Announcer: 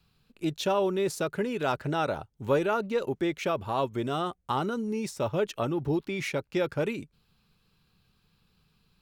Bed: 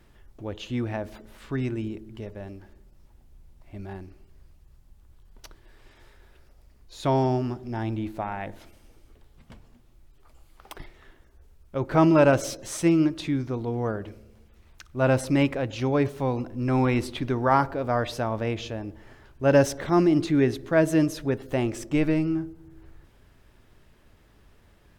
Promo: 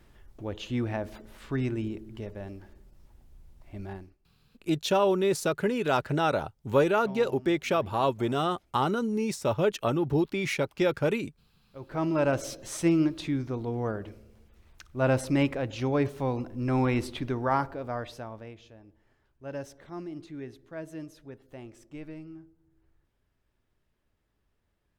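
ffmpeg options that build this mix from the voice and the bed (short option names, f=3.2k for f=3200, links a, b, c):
-filter_complex "[0:a]adelay=4250,volume=2.5dB[a];[1:a]volume=17.5dB,afade=t=out:st=3.91:d=0.26:silence=0.0944061,afade=t=in:st=11.64:d=1.11:silence=0.11885,afade=t=out:st=17.08:d=1.49:silence=0.158489[b];[a][b]amix=inputs=2:normalize=0"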